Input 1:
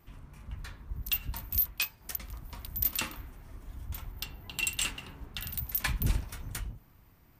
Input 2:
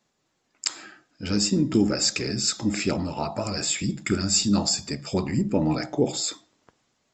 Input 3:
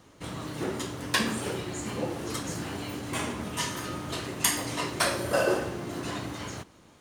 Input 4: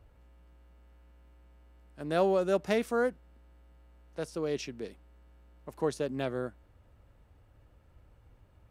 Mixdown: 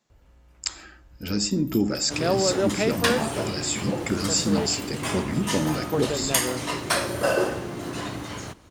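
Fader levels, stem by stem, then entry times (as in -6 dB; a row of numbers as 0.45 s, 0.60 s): -15.0 dB, -2.0 dB, +2.5 dB, +3.0 dB; 0.15 s, 0.00 s, 1.90 s, 0.10 s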